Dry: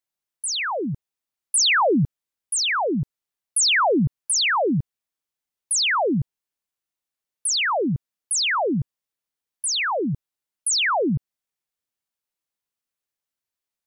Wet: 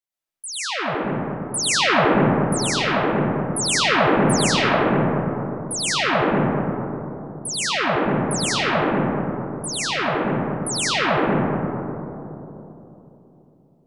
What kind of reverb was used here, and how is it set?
digital reverb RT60 3.4 s, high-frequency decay 0.25×, pre-delay 75 ms, DRR -8.5 dB; gain -6 dB

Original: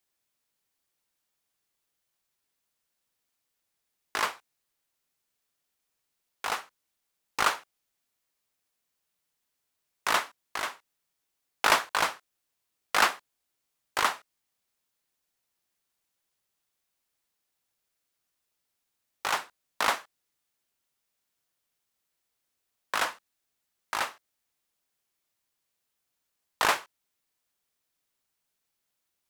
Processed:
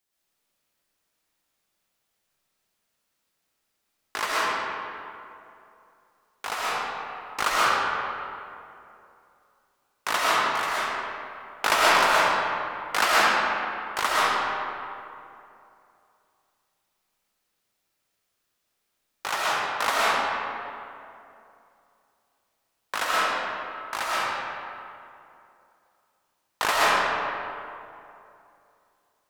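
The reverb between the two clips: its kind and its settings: digital reverb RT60 2.7 s, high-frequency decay 0.55×, pre-delay 85 ms, DRR -7.5 dB; gain -1 dB

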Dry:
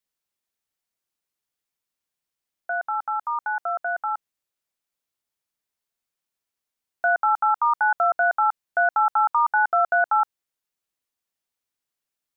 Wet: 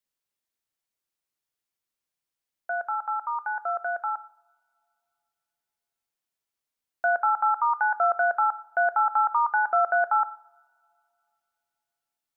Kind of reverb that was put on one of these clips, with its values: two-slope reverb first 0.71 s, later 2.7 s, from -24 dB, DRR 13.5 dB; gain -2.5 dB

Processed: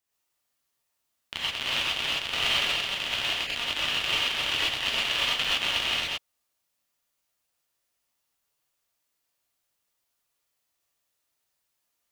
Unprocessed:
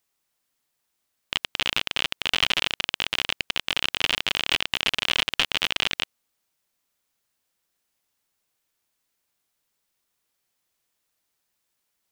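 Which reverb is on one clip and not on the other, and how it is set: non-linear reverb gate 0.15 s rising, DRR -7.5 dB; gain -9.5 dB

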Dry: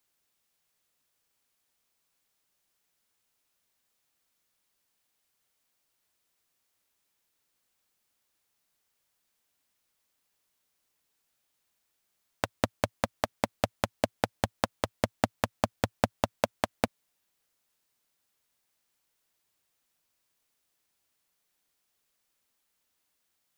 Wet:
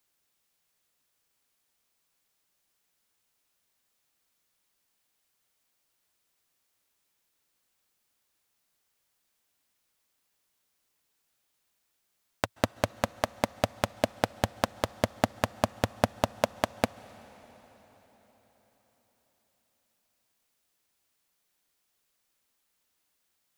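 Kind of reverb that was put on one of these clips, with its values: plate-style reverb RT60 4.7 s, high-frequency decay 0.9×, pre-delay 0.12 s, DRR 18.5 dB; gain +1 dB

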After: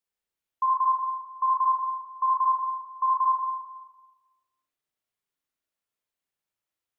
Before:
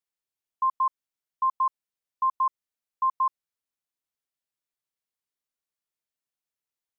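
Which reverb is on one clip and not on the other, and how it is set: spring tank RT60 1.2 s, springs 36/54 ms, chirp 35 ms, DRR -2 dB

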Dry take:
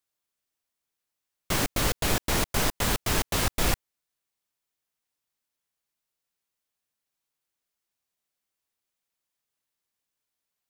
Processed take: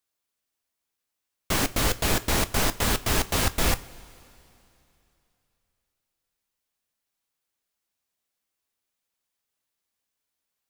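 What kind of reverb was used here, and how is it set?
two-slope reverb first 0.25 s, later 3 s, from -18 dB, DRR 11.5 dB; gain +1.5 dB

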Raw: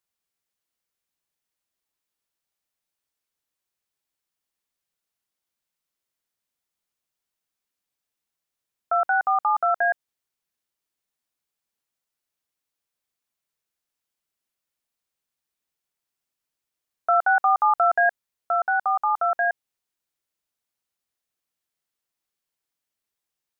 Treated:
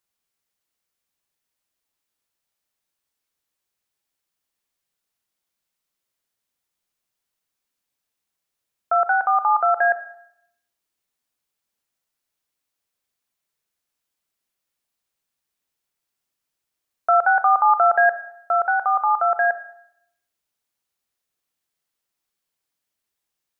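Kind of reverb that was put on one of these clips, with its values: Schroeder reverb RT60 0.74 s, combs from 28 ms, DRR 11 dB; gain +3 dB

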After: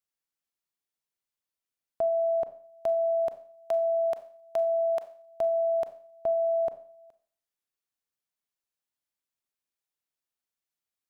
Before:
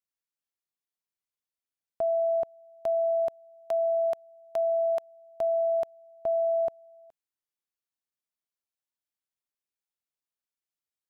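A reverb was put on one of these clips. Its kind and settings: Schroeder reverb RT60 0.48 s, combs from 29 ms, DRR 12 dB; gain +1 dB

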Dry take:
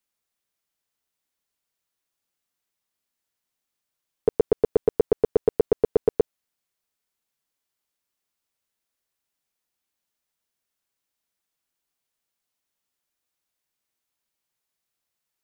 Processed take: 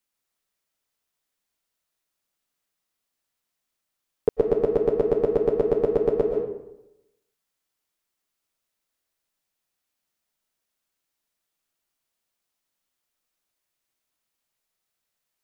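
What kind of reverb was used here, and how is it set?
digital reverb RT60 0.91 s, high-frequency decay 0.6×, pre-delay 90 ms, DRR 2.5 dB

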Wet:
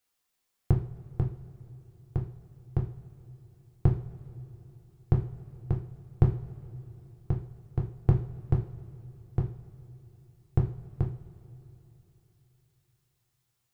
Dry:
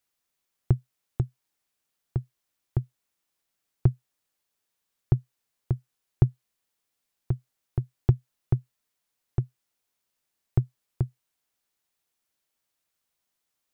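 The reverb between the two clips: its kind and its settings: two-slope reverb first 0.39 s, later 3.6 s, from -21 dB, DRR 0 dB; gain -1 dB

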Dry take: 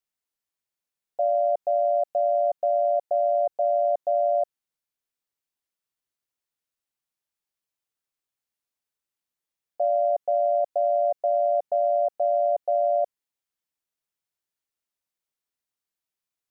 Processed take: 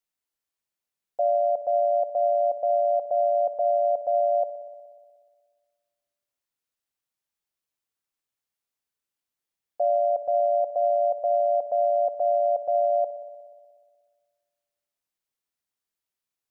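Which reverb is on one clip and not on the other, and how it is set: spring tank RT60 1.7 s, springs 60 ms, chirp 50 ms, DRR 12 dB

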